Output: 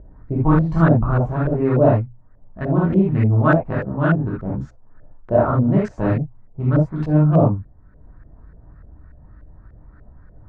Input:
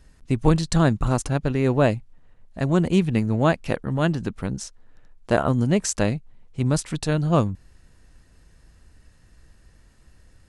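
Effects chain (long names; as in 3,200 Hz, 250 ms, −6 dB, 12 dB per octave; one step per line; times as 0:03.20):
adaptive Wiener filter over 15 samples
reverb whose tail is shaped and stops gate 100 ms flat, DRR −6 dB
upward compression, threshold −33 dBFS
auto-filter low-pass saw up 3.4 Hz 560–1,600 Hz
parametric band 710 Hz −7 dB 2.7 octaves
mains-hum notches 60/120 Hz
level −1 dB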